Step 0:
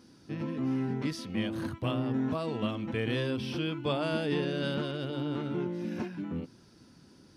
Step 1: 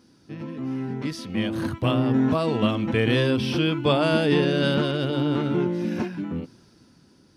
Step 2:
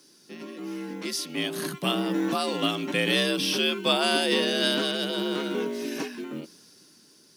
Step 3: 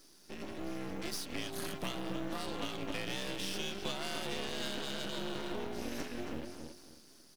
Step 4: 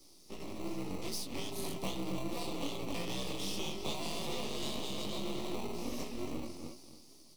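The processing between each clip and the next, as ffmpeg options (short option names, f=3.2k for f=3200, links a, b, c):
-af "dynaudnorm=f=220:g=13:m=10dB"
-af "afreqshift=62,crystalizer=i=7:c=0,acrusher=bits=8:mode=log:mix=0:aa=0.000001,volume=-6.5dB"
-filter_complex "[0:a]asplit=2[a][b];[b]adelay=270,lowpass=f=3.3k:p=1,volume=-8dB,asplit=2[c][d];[d]adelay=270,lowpass=f=3.3k:p=1,volume=0.27,asplit=2[e][f];[f]adelay=270,lowpass=f=3.3k:p=1,volume=0.27[g];[a][c][e][g]amix=inputs=4:normalize=0,acompressor=threshold=-32dB:ratio=6,aeval=exprs='max(val(0),0)':c=same"
-filter_complex "[0:a]flanger=delay=15.5:depth=7.6:speed=2.5,acrossover=split=180|450|2500[a][b][c][d];[c]acrusher=samples=26:mix=1:aa=0.000001[e];[a][b][e][d]amix=inputs=4:normalize=0,volume=4dB"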